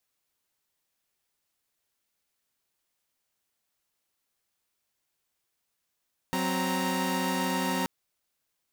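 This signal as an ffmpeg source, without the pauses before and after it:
-f lavfi -i "aevalsrc='0.0376*((2*mod(185*t,1)-1)+(2*mod(261.63*t,1)-1)+(2*mod(932.33*t,1)-1))':d=1.53:s=44100"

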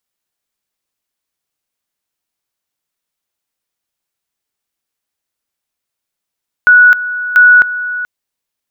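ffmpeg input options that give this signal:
-f lavfi -i "aevalsrc='pow(10,(-2-14*gte(mod(t,0.69),0.26))/20)*sin(2*PI*1470*t)':d=1.38:s=44100"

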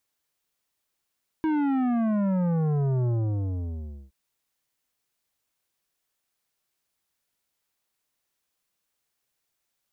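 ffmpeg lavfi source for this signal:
-f lavfi -i "aevalsrc='0.0708*clip((2.67-t)/1.04,0,1)*tanh(3.76*sin(2*PI*320*2.67/log(65/320)*(exp(log(65/320)*t/2.67)-1)))/tanh(3.76)':d=2.67:s=44100"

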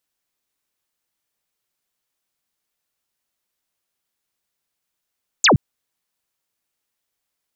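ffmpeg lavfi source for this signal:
-f lavfi -i "aevalsrc='0.335*clip(t/0.002,0,1)*clip((0.12-t)/0.002,0,1)*sin(2*PI*7900*0.12/log(92/7900)*(exp(log(92/7900)*t/0.12)-1))':d=0.12:s=44100"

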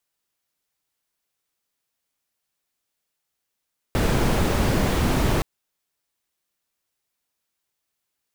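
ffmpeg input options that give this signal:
-f lavfi -i "anoisesrc=c=brown:a=0.468:d=1.47:r=44100:seed=1"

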